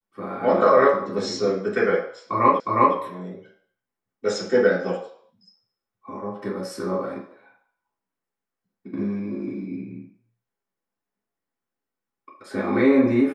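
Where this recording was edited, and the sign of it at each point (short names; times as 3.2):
2.6 repeat of the last 0.36 s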